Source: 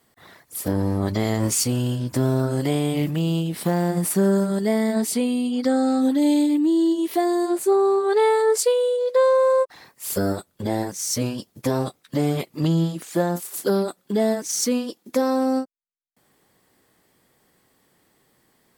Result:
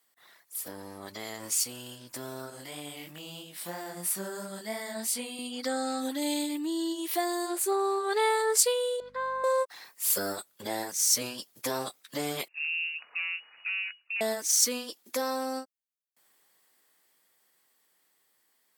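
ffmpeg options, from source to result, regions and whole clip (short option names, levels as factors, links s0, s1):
-filter_complex "[0:a]asettb=1/sr,asplit=3[s0][s1][s2];[s0]atrim=end=2.504[s3];[s1]atrim=start=2.5:end=5.39,asetpts=PTS-STARTPTS,afade=t=in:d=0.004:c=qsin,afade=t=out:st=2.886:d=0.004:c=qsin,bandreject=f=420:w=6.9,flanger=delay=20:depth=3.1:speed=3[s4];[s2]atrim=start=5.386[s5];[s3][s4]acrossfade=d=0.004:c1=hsin:c2=qsin[s6];[s6][s5]acrossfade=d=0.004:c1=qsin:c2=hsin,asettb=1/sr,asplit=3[s7][s8][s9];[s7]atrim=end=9.004[s10];[s8]atrim=start=9:end=9.44,asetpts=PTS-STARTPTS,afade=t=in:d=0.004:c=qsin,afade=t=out:st=0.436:d=0.004:c=qsin,bandpass=f=1300:t=q:w=2.1,aeval=exprs='val(0)+0.0126*(sin(2*PI*50*n/s)+sin(2*PI*2*50*n/s)/2+sin(2*PI*3*50*n/s)/3+sin(2*PI*4*50*n/s)/4+sin(2*PI*5*50*n/s)/5)':c=same[s11];[s9]atrim=start=9.436[s12];[s10][s11]acrossfade=d=0.004:c1=hsin:c2=qsin[s13];[s13][s12]acrossfade=d=0.004:c1=qsin:c2=hsin,asettb=1/sr,asplit=3[s14][s15][s16];[s14]atrim=end=12.484[s17];[s15]atrim=start=12.48:end=14.21,asetpts=PTS-STARTPTS,afade=t=in:d=0.004:c=qsin,afade=t=out:st=1.726:d=0.004:c=qsin,aeval=exprs='(tanh(6.31*val(0)+0.65)-tanh(0.65))/6.31':c=same,acompressor=threshold=0.0178:ratio=2:attack=3.2:release=140:knee=1:detection=peak,lowpass=f=2500:t=q:w=0.5098,lowpass=f=2500:t=q:w=0.6013,lowpass=f=2500:t=q:w=0.9,lowpass=f=2500:t=q:w=2.563,afreqshift=-2900[s18];[s16]atrim=start=14.206[s19];[s17][s18]acrossfade=d=0.004:c1=hsin:c2=qsin[s20];[s20][s19]acrossfade=d=0.004:c1=qsin:c2=hsin,highpass=f=1500:p=1,highshelf=f=11000:g=5,dynaudnorm=f=750:g=11:m=3.55,volume=0.447"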